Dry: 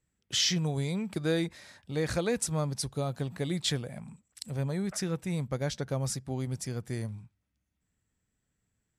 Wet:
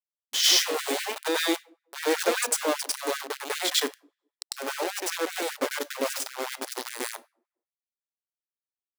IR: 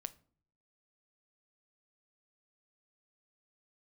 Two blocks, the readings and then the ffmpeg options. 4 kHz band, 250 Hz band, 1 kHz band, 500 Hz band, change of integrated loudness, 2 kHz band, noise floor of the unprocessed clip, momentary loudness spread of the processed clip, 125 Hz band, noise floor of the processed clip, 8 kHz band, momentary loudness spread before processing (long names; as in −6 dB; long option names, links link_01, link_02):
+8.0 dB, −2.5 dB, +10.5 dB, +4.5 dB, +5.0 dB, +10.0 dB, −81 dBFS, 12 LU, below −40 dB, below −85 dBFS, +7.5 dB, 10 LU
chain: -filter_complex "[0:a]aeval=exprs='val(0)*gte(abs(val(0)),0.0355)':channel_layout=same,asplit=2[link_01][link_02];[1:a]atrim=start_sample=2205,adelay=99[link_03];[link_02][link_03]afir=irnorm=-1:irlink=0,volume=8.5dB[link_04];[link_01][link_04]amix=inputs=2:normalize=0,afftfilt=real='re*gte(b*sr/1024,230*pow(1500/230,0.5+0.5*sin(2*PI*5.1*pts/sr)))':imag='im*gte(b*sr/1024,230*pow(1500/230,0.5+0.5*sin(2*PI*5.1*pts/sr)))':win_size=1024:overlap=0.75,volume=2dB"